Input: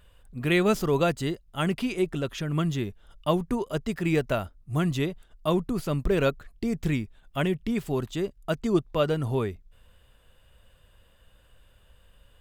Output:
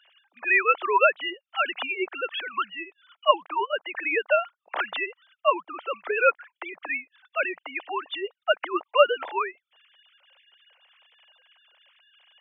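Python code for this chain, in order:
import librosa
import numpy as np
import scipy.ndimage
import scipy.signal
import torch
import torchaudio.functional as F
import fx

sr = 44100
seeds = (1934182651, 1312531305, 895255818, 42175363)

y = fx.sine_speech(x, sr)
y = scipy.signal.sosfilt(scipy.signal.butter(4, 620.0, 'highpass', fs=sr, output='sos'), y)
y = fx.high_shelf(y, sr, hz=2900.0, db=8.5)
y = F.gain(torch.from_numpy(y), 7.5).numpy()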